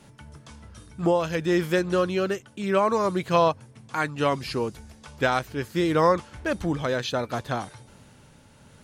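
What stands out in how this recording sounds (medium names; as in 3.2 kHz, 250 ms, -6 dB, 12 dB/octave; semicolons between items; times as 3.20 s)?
tremolo triangle 0.68 Hz, depth 40%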